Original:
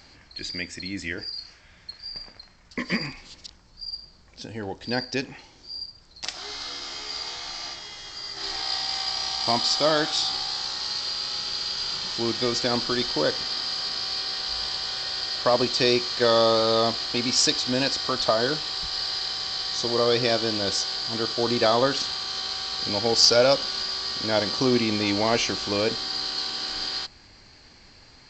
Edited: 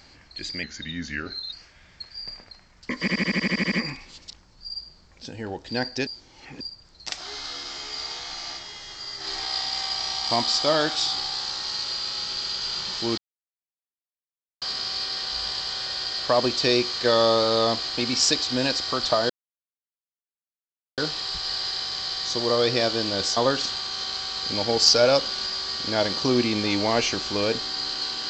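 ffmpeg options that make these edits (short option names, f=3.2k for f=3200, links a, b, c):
-filter_complex "[0:a]asplit=18[a][b][c][d][e][f][g][h][i][j][k][l][m][n][o][p][q][r];[a]atrim=end=0.634[s];[b]atrim=start=0.63:end=1.41,asetpts=PTS-STARTPTS,asetrate=38367,aresample=44100[t];[c]atrim=start=1.406:end=2.962[u];[d]atrim=start=2.878:end=2.962[v];[e]atrim=start=2.878:end=2.962[w];[f]atrim=start=2.878:end=2.962[x];[g]atrim=start=2.878:end=2.962[y];[h]atrim=start=2.878:end=2.962[z];[i]atrim=start=2.878:end=2.962[aa];[j]atrim=start=2.878:end=2.962[ab];[k]atrim=start=2.878:end=2.962[ac];[l]atrim=start=2.878:end=5.232[ad];[m]atrim=start=5.228:end=5.772,asetpts=PTS-STARTPTS,areverse[ae];[n]atrim=start=5.768:end=12.34,asetpts=PTS-STARTPTS,afade=t=out:st=6.568:d=0.004:c=hsin[af];[o]atrim=start=12.34:end=13.78,asetpts=PTS-STARTPTS,volume=0[ag];[p]atrim=start=13.78:end=18.46,asetpts=PTS-STARTPTS,afade=t=in:d=0.004:c=hsin,afade=t=out:st=4.676:d=0.004:c=hsin,apad=pad_dur=1.68[ah];[q]atrim=start=18.46:end=20.852,asetpts=PTS-STARTPTS,afade=t=in:d=0.004:c=hsin[ai];[r]atrim=start=21.728[aj];[s][t]acrossfade=d=0.004:c1=hsin:c2=hsin[ak];[ak][u]acrossfade=d=0.004:c1=hsin:c2=hsin[al];[al][v]acrossfade=d=0.004:c1=hsin:c2=hsin[am];[am][w]acrossfade=d=0.004:c1=hsin:c2=hsin[an];[an][x]acrossfade=d=0.004:c1=hsin:c2=hsin[ao];[ao][y]acrossfade=d=0.004:c1=hsin:c2=hsin[ap];[ap][z]acrossfade=d=0.004:c1=hsin:c2=hsin[aq];[aq][aa]acrossfade=d=0.004:c1=hsin:c2=hsin[ar];[ar][ab]acrossfade=d=0.004:c1=hsin:c2=hsin[as];[as][ac]acrossfade=d=0.004:c1=hsin:c2=hsin[at];[at][ad]acrossfade=d=0.004:c1=hsin:c2=hsin[au];[au][ae]acrossfade=d=0.004:c1=hsin:c2=hsin[av];[af][ag][ah][ai]concat=n=4:v=0:a=1[aw];[av][aw]acrossfade=d=0.004:c1=hsin:c2=hsin[ax];[ax][aj]acrossfade=d=0.004:c1=hsin:c2=hsin"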